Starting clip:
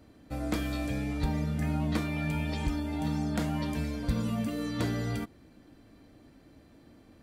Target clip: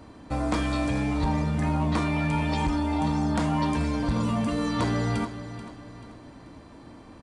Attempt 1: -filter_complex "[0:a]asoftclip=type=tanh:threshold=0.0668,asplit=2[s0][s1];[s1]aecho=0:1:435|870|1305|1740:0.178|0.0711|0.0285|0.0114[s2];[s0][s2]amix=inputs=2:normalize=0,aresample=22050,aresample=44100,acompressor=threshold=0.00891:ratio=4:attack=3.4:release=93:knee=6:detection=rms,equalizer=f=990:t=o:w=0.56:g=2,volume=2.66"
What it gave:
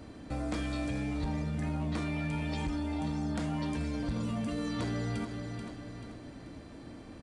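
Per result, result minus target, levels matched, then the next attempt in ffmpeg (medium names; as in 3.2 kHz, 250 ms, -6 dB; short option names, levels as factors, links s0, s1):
compression: peak gain reduction +8 dB; 1 kHz band -4.5 dB
-filter_complex "[0:a]asoftclip=type=tanh:threshold=0.0668,asplit=2[s0][s1];[s1]aecho=0:1:435|870|1305|1740:0.178|0.0711|0.0285|0.0114[s2];[s0][s2]amix=inputs=2:normalize=0,aresample=22050,aresample=44100,acompressor=threshold=0.0316:ratio=4:attack=3.4:release=93:knee=6:detection=rms,equalizer=f=990:t=o:w=0.56:g=2,volume=2.66"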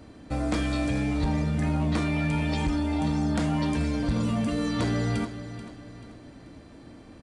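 1 kHz band -4.5 dB
-filter_complex "[0:a]asoftclip=type=tanh:threshold=0.0668,asplit=2[s0][s1];[s1]aecho=0:1:435|870|1305|1740:0.178|0.0711|0.0285|0.0114[s2];[s0][s2]amix=inputs=2:normalize=0,aresample=22050,aresample=44100,acompressor=threshold=0.0316:ratio=4:attack=3.4:release=93:knee=6:detection=rms,equalizer=f=990:t=o:w=0.56:g=10.5,volume=2.66"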